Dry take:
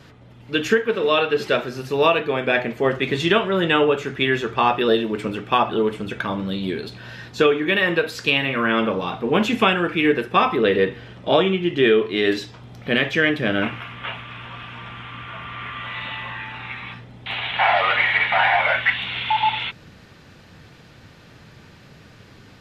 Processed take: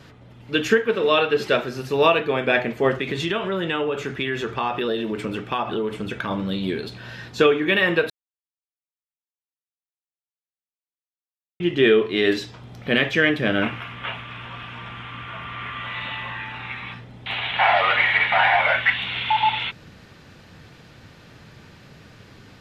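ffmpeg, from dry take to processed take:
-filter_complex "[0:a]asettb=1/sr,asplit=3[a][b][c];[a]atrim=end=3.014[d];[b]atrim=start=3.01:end=6.31,asetpts=PTS-STARTPTS,afade=t=in:d=0.004:c=qsin,afade=t=out:st=3.296:d=0.004:c=qsin,acompressor=threshold=-22dB:ratio=3:attack=3.2:release=140:knee=1:detection=peak[e];[c]atrim=start=6.306[f];[d][e]acrossfade=d=0.004:c1=hsin:c2=qsin[g];[g][f]acrossfade=d=0.004:c1=qsin:c2=hsin,asplit=3[h][i][j];[h]atrim=end=8.1,asetpts=PTS-STARTPTS,afade=t=out:st=8.096:d=0.004:c=hsin[k];[i]atrim=start=8.1:end=11.6,asetpts=PTS-STARTPTS,volume=0[l];[j]atrim=start=11.6,asetpts=PTS-STARTPTS,afade=t=in:d=0.004:c=hsin[m];[k][l][m]concat=n=3:v=0:a=1"

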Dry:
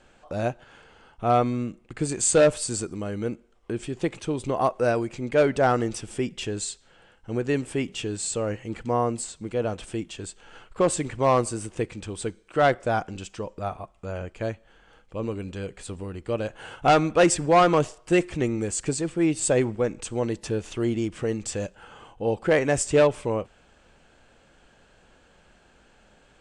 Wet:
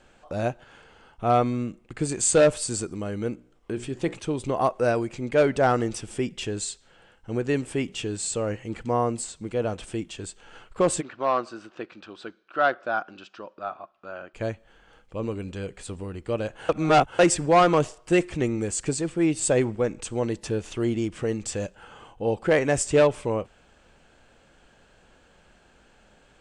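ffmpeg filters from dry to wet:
-filter_complex "[0:a]asettb=1/sr,asplit=3[a][b][c];[a]atrim=end=3.324[d];[b]atrim=start=3.32:end=4.14,asetpts=PTS-STARTPTS,afade=t=in:d=0.004:c=qsin,afade=t=out:st=0.816:d=0.004:c=qsin,bandreject=f=60.52:t=h:w=4,bandreject=f=121.04:t=h:w=4,bandreject=f=181.56:t=h:w=4,bandreject=f=242.08:t=h:w=4,bandreject=f=302.6:t=h:w=4,bandreject=f=363.12:t=h:w=4,bandreject=f=423.64:t=h:w=4,bandreject=f=484.16:t=h:w=4,bandreject=f=544.68:t=h:w=4,bandreject=f=605.2:t=h:w=4,bandreject=f=665.72:t=h:w=4,bandreject=f=726.24:t=h:w=4,bandreject=f=786.76:t=h:w=4,bandreject=f=847.28:t=h:w=4,bandreject=f=907.8:t=h:w=4,bandreject=f=968.32:t=h:w=4,bandreject=f=1.02884k:t=h:w=4,bandreject=f=1.08936k:t=h:w=4,bandreject=f=1.14988k:t=h:w=4,bandreject=f=1.2104k:t=h:w=4,bandreject=f=1.27092k:t=h:w=4,bandreject=f=1.33144k:t=h:w=4,bandreject=f=1.39196k:t=h:w=4,bandreject=f=1.45248k:t=h:w=4,bandreject=f=1.513k:t=h:w=4,bandreject=f=1.57352k:t=h:w=4,bandreject=f=1.63404k:t=h:w=4,bandreject=f=1.69456k:t=h:w=4,bandreject=f=1.75508k:t=h:w=4,bandreject=f=1.8156k:t=h:w=4,bandreject=f=1.87612k:t=h:w=4[e];[c]atrim=start=4.136[f];[d][e]acrossfade=d=0.004:c1=hsin:c2=qsin[g];[g][f]acrossfade=d=0.004:c1=qsin:c2=hsin,asplit=3[h][i][j];[h]afade=t=out:st=11:d=0.02[k];[i]highpass=380,equalizer=f=460:t=q:w=4:g=-10,equalizer=f=880:t=q:w=4:g=-5,equalizer=f=1.4k:t=q:w=4:g=6,equalizer=f=2.1k:t=q:w=4:g=-9,equalizer=f=3.2k:t=q:w=4:g=-4,lowpass=f=4.2k:w=0.5412,lowpass=f=4.2k:w=1.3066,afade=t=in:st=11:d=0.02,afade=t=out:st=14.33:d=0.02[l];[j]afade=t=in:st=14.33:d=0.02[m];[k][l][m]amix=inputs=3:normalize=0,asplit=3[n][o][p];[n]atrim=end=16.692[q];[o]atrim=start=16.688:end=17.192,asetpts=PTS-STARTPTS,areverse[r];[p]atrim=start=17.188[s];[q][r]acrossfade=d=0.004:c1=hsin:c2=hsin[t];[t][s]acrossfade=d=0.004:c1=hsin:c2=hsin"

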